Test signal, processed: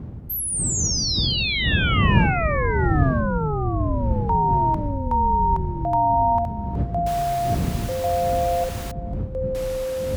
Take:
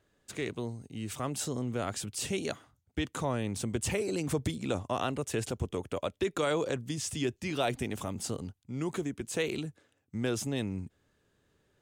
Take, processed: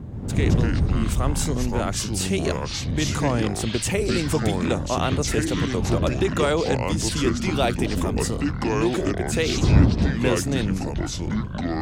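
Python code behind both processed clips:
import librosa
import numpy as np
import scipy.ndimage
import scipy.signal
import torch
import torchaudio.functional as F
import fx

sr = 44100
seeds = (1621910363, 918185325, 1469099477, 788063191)

y = fx.dmg_wind(x, sr, seeds[0], corner_hz=140.0, level_db=-34.0)
y = scipy.signal.sosfilt(scipy.signal.butter(2, 46.0, 'highpass', fs=sr, output='sos'), y)
y = fx.echo_pitch(y, sr, ms=119, semitones=-5, count=3, db_per_echo=-3.0)
y = F.gain(torch.from_numpy(y), 7.5).numpy()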